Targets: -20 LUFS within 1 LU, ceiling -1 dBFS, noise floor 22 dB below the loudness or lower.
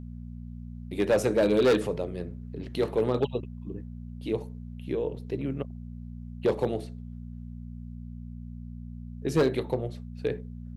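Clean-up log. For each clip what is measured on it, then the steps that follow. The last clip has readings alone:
clipped 0.7%; flat tops at -17.0 dBFS; hum 60 Hz; harmonics up to 240 Hz; hum level -38 dBFS; loudness -29.0 LUFS; peak -17.0 dBFS; loudness target -20.0 LUFS
-> clip repair -17 dBFS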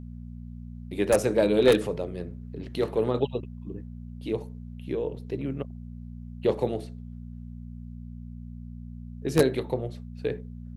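clipped 0.0%; hum 60 Hz; harmonics up to 240 Hz; hum level -38 dBFS
-> de-hum 60 Hz, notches 4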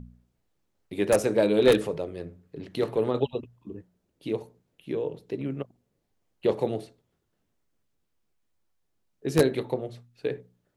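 hum none; loudness -27.5 LUFS; peak -7.5 dBFS; loudness target -20.0 LUFS
-> gain +7.5 dB; limiter -1 dBFS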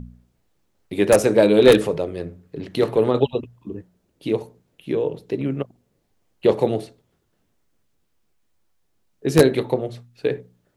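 loudness -20.0 LUFS; peak -1.0 dBFS; noise floor -69 dBFS

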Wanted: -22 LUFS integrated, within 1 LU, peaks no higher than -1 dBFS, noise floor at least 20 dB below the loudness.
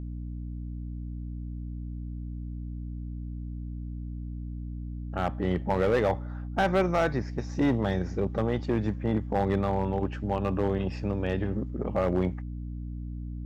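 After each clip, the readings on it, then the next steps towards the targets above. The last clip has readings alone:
clipped 0.8%; flat tops at -18.0 dBFS; hum 60 Hz; harmonics up to 300 Hz; hum level -34 dBFS; loudness -30.5 LUFS; peak -18.0 dBFS; loudness target -22.0 LUFS
-> clip repair -18 dBFS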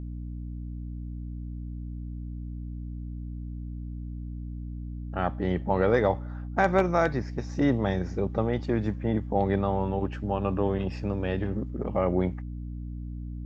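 clipped 0.0%; hum 60 Hz; harmonics up to 300 Hz; hum level -33 dBFS
-> de-hum 60 Hz, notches 5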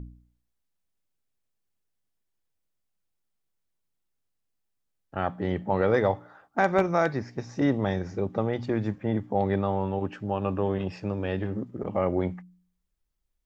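hum none; loudness -28.0 LUFS; peak -8.5 dBFS; loudness target -22.0 LUFS
-> gain +6 dB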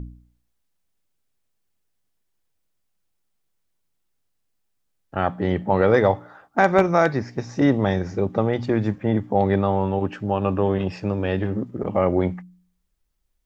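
loudness -22.0 LUFS; peak -2.5 dBFS; noise floor -72 dBFS

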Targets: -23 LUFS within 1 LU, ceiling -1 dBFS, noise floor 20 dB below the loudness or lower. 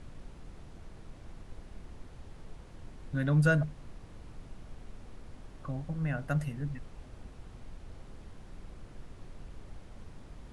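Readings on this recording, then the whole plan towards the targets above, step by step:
noise floor -51 dBFS; noise floor target -52 dBFS; loudness -32.0 LUFS; peak -14.0 dBFS; loudness target -23.0 LUFS
-> noise print and reduce 6 dB; gain +9 dB

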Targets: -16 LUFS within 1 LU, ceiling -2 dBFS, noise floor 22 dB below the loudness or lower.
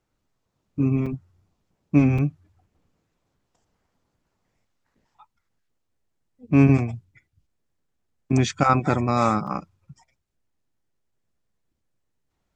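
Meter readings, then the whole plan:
dropouts 3; longest dropout 5.0 ms; loudness -22.0 LUFS; peak -3.5 dBFS; loudness target -16.0 LUFS
-> interpolate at 1.06/2.18/9.47, 5 ms; gain +6 dB; limiter -2 dBFS

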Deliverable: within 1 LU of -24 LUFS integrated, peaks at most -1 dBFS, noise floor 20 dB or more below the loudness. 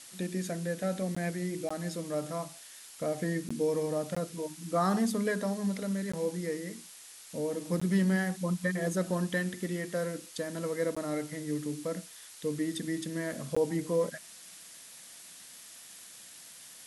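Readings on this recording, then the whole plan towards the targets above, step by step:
dropouts 8; longest dropout 15 ms; noise floor -51 dBFS; noise floor target -53 dBFS; loudness -33.0 LUFS; peak -16.5 dBFS; loudness target -24.0 LUFS
-> interpolate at 1.15/1.69/3.49/4.15/6.12/7.8/10.95/13.55, 15 ms; noise print and reduce 6 dB; gain +9 dB

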